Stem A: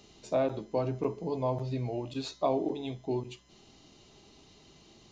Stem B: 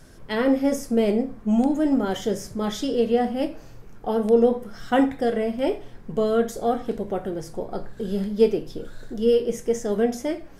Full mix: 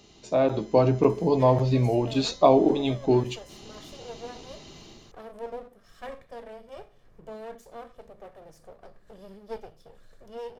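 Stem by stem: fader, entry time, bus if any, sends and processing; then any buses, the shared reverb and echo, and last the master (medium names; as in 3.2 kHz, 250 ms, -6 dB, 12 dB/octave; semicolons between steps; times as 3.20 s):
+2.0 dB, 0.00 s, no send, level rider gain up to 9 dB
-17.5 dB, 1.10 s, no send, comb filter that takes the minimum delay 1.7 ms; hum notches 60/120/180/240 Hz; upward compressor, threshold -27 dBFS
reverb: none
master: none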